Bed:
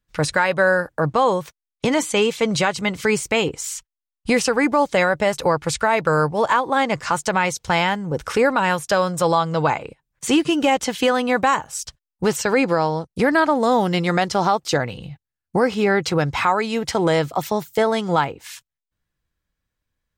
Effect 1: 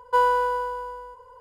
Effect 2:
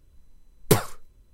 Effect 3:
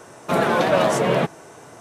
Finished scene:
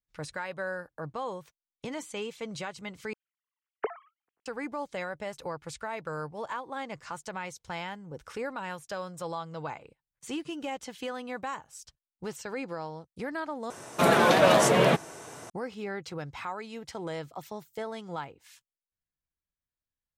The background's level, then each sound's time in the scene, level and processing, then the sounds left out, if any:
bed -18 dB
3.13 replace with 2 -14.5 dB + sine-wave speech
13.7 replace with 3 -2.5 dB + high shelf 2500 Hz +6 dB
not used: 1

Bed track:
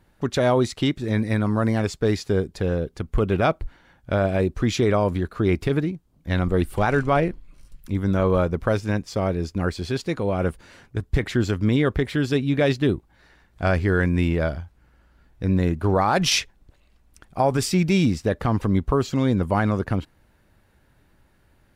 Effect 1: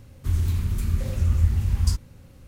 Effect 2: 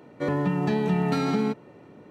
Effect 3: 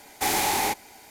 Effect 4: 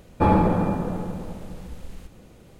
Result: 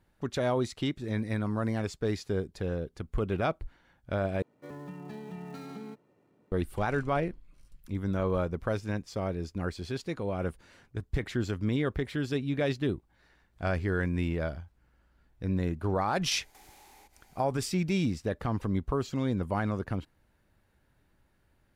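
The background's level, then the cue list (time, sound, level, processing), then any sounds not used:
bed track -9 dB
4.42 replace with 2 -18 dB + switching dead time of 0.065 ms
16.34 add 3 -15 dB + compressor 12:1, threshold -39 dBFS
not used: 1, 4

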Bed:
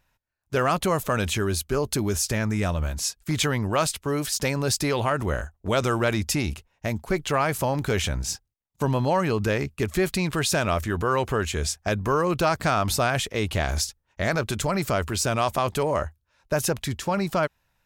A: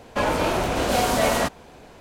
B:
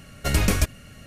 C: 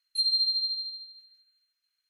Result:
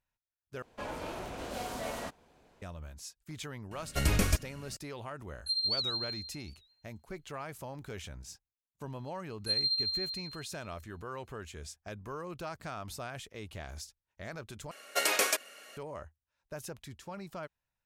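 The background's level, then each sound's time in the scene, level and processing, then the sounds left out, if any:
bed -18.5 dB
0.62 replace with A -17.5 dB
3.71 add B -6.5 dB
5.31 add C -6 dB + record warp 78 rpm, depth 160 cents
9.31 add C -5 dB
14.71 replace with B -1 dB + HPF 440 Hz 24 dB/oct

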